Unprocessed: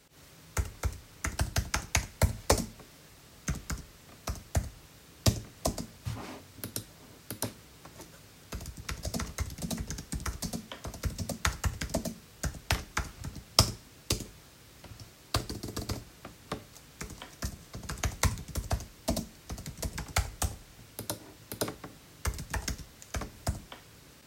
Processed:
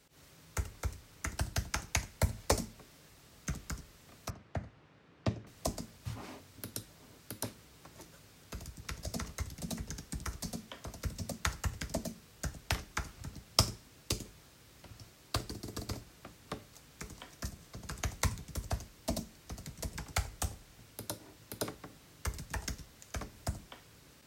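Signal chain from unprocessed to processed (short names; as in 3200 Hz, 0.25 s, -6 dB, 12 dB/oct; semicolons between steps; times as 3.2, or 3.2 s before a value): 4.3–5.47 BPF 110–2300 Hz; gain -4.5 dB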